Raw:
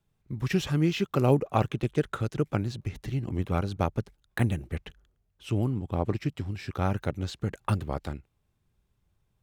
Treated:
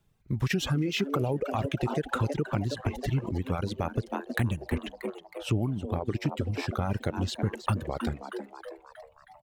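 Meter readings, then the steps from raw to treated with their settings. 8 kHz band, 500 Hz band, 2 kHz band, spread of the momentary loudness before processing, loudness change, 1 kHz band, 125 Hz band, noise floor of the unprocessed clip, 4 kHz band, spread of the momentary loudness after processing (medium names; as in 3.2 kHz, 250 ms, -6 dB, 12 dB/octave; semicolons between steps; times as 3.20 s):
+2.5 dB, -1.5 dB, +2.0 dB, 11 LU, -1.5 dB, -0.5 dB, -1.0 dB, -75 dBFS, +3.0 dB, 10 LU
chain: on a send: frequency-shifting echo 317 ms, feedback 53%, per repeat +130 Hz, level -11.5 dB; on the sum: peak limiter -19 dBFS, peak gain reduction 10.5 dB; compression 2.5:1, threshold -30 dBFS, peak gain reduction 5 dB; reverb removal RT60 1.4 s; trim +6 dB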